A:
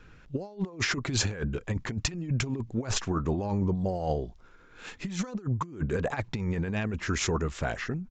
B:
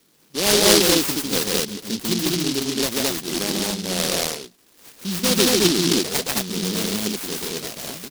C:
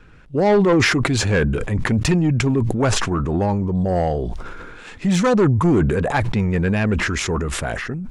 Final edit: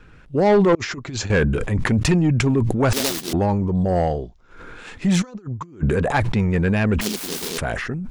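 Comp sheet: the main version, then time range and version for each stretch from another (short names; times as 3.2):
C
0.75–1.3 from A
2.93–3.33 from B
4.17–4.6 from A, crossfade 0.24 s
5.22–5.83 from A
7.01–7.58 from B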